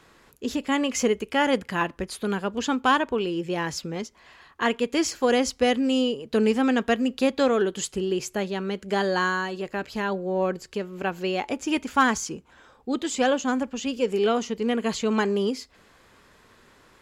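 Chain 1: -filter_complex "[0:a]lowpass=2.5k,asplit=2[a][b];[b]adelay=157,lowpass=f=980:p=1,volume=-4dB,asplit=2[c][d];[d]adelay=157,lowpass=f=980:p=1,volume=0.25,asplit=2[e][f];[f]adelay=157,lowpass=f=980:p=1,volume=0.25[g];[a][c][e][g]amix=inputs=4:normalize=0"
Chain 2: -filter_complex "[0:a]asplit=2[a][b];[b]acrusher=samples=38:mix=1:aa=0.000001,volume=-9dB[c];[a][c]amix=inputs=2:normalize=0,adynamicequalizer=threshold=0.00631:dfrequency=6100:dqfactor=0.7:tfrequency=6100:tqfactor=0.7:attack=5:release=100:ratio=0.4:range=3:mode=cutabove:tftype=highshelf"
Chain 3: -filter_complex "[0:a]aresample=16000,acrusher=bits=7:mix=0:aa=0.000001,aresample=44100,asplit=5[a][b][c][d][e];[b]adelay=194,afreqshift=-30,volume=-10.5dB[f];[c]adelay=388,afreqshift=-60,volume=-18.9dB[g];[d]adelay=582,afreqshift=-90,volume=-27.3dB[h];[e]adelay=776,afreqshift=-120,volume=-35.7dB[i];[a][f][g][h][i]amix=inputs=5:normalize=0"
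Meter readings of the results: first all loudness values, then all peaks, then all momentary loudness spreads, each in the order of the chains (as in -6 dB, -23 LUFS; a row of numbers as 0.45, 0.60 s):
-24.5, -24.0, -25.0 LUFS; -9.0, -7.5, -9.0 dBFS; 9, 8, 9 LU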